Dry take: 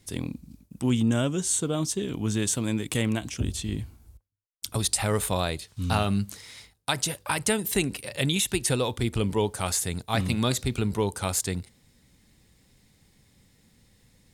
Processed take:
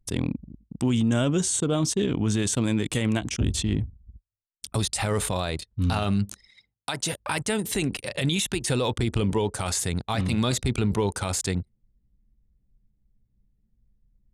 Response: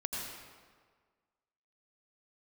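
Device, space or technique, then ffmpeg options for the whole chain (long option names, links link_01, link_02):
stacked limiters: -filter_complex "[0:a]asettb=1/sr,asplit=3[link_01][link_02][link_03];[link_01]atrim=end=6.474[link_04];[link_02]atrim=start=6.47:end=7.13,asetpts=PTS-STARTPTS,afade=type=in:duration=0.004:curve=qsin,afade=type=out:start_time=0.656:duration=0.004:curve=qsin,highpass=150[link_05];[link_03]atrim=start=7.126[link_06];[link_04][link_05]acrossfade=duration=0.004:curve1=hsin:curve2=qsin[link_07];[link_07][link_06]acrossfade=duration=0.004:curve1=qsin:curve2=hsin,anlmdn=0.631,alimiter=limit=-15.5dB:level=0:latency=1:release=474,alimiter=limit=-22dB:level=0:latency=1:release=13,lowpass=9100,volume=6.5dB"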